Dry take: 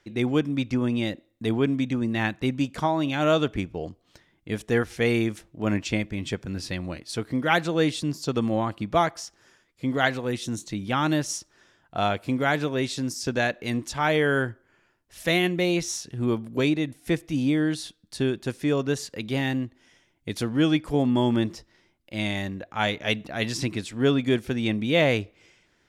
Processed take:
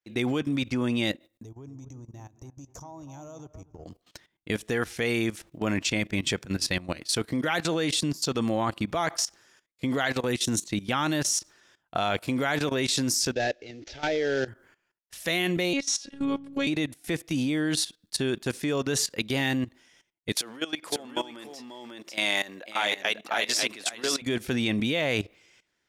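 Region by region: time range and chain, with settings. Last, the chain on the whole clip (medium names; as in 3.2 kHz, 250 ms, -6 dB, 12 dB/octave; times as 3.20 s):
1.43–3.86 s: FFT filter 130 Hz 0 dB, 210 Hz -18 dB, 290 Hz -9 dB, 450 Hz -12 dB, 960 Hz -9 dB, 1.7 kHz -27 dB, 4.3 kHz -25 dB, 6.2 kHz +4 dB, 8.9 kHz -21 dB, 14 kHz -8 dB + compression 10:1, threshold -43 dBFS + feedback echo behind a low-pass 246 ms, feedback 41%, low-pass 1.9 kHz, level -11.5 dB
13.33–14.48 s: CVSD coder 32 kbps + treble shelf 2.1 kHz -7.5 dB + static phaser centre 440 Hz, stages 4
15.73–16.67 s: low-pass 6.1 kHz + robot voice 278 Hz
20.32–24.22 s: compression, threshold -25 dBFS + high-pass 420 Hz + delay 544 ms -5 dB
whole clip: expander -54 dBFS; tilt EQ +1.5 dB/octave; level held to a coarse grid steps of 17 dB; trim +8 dB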